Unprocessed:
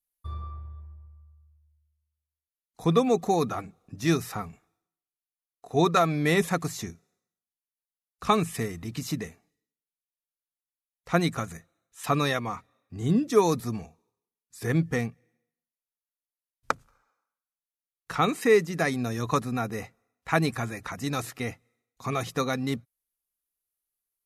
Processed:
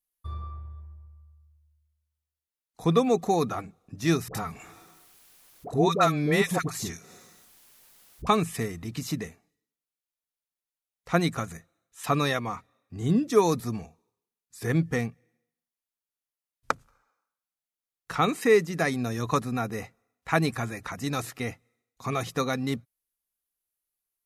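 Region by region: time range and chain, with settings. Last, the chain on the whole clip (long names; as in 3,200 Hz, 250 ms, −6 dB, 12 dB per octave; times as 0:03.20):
0:04.28–0:08.27: all-pass dispersion highs, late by 67 ms, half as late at 750 Hz + upward compression, threshold −27 dBFS
whole clip: no processing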